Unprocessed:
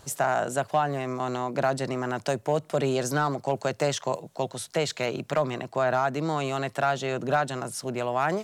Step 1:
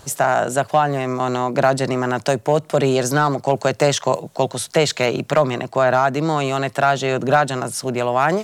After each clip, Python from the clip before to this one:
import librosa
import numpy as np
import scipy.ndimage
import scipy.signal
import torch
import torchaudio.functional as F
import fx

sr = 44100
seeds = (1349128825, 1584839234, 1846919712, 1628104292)

y = fx.rider(x, sr, range_db=10, speed_s=2.0)
y = F.gain(torch.from_numpy(y), 8.5).numpy()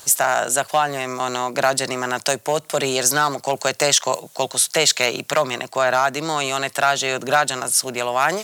y = fx.tilt_eq(x, sr, slope=3.5)
y = F.gain(torch.from_numpy(y), -1.0).numpy()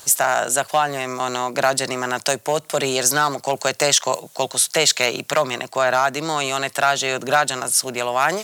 y = x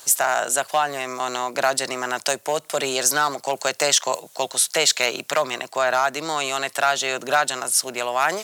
y = fx.highpass(x, sr, hz=330.0, slope=6)
y = F.gain(torch.from_numpy(y), -1.5).numpy()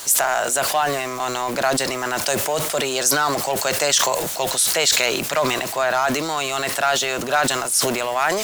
y = x + 0.5 * 10.0 ** (-29.0 / 20.0) * np.sign(x)
y = fx.sustainer(y, sr, db_per_s=35.0)
y = F.gain(torch.from_numpy(y), -1.0).numpy()